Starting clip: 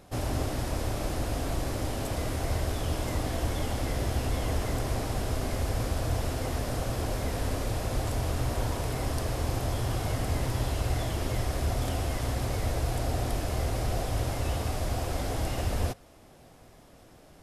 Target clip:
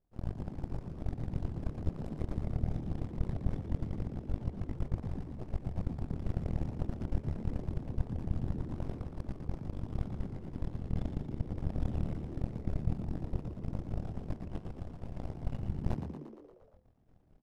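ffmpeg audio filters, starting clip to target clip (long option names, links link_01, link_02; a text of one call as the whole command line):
ffmpeg -i in.wav -filter_complex "[0:a]aemphasis=mode=reproduction:type=riaa,areverse,acompressor=threshold=-25dB:ratio=16,areverse,flanger=delay=20:depth=6.3:speed=0.21,aeval=exprs='0.1*(cos(1*acos(clip(val(0)/0.1,-1,1)))-cos(1*PI/2))+0.0316*(cos(3*acos(clip(val(0)/0.1,-1,1)))-cos(3*PI/2))+0.0316*(cos(4*acos(clip(val(0)/0.1,-1,1)))-cos(4*PI/2))+0.0112*(cos(6*acos(clip(val(0)/0.1,-1,1)))-cos(6*PI/2))':channel_layout=same,asplit=2[link_01][link_02];[link_02]asplit=7[link_03][link_04][link_05][link_06][link_07][link_08][link_09];[link_03]adelay=116,afreqshift=73,volume=-8.5dB[link_10];[link_04]adelay=232,afreqshift=146,volume=-13.2dB[link_11];[link_05]adelay=348,afreqshift=219,volume=-18dB[link_12];[link_06]adelay=464,afreqshift=292,volume=-22.7dB[link_13];[link_07]adelay=580,afreqshift=365,volume=-27.4dB[link_14];[link_08]adelay=696,afreqshift=438,volume=-32.2dB[link_15];[link_09]adelay=812,afreqshift=511,volume=-36.9dB[link_16];[link_10][link_11][link_12][link_13][link_14][link_15][link_16]amix=inputs=7:normalize=0[link_17];[link_01][link_17]amix=inputs=2:normalize=0" out.wav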